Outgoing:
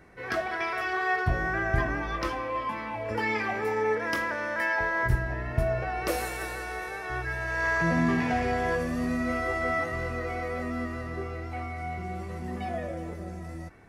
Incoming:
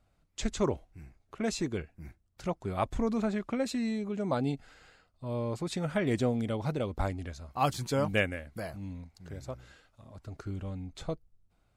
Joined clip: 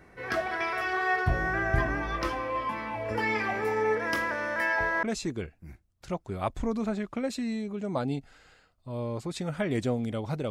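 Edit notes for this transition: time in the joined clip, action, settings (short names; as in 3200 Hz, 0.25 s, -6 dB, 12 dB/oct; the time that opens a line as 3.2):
outgoing
5.03 switch to incoming from 1.39 s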